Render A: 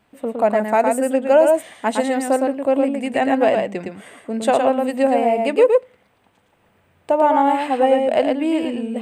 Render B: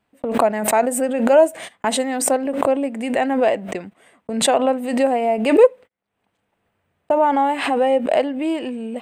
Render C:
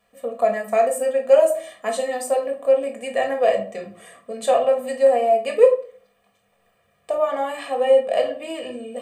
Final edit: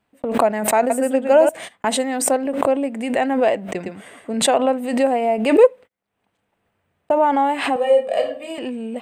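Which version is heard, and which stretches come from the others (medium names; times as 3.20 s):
B
0.90–1.49 s: from A
3.75–4.34 s: from A
7.76–8.58 s: from C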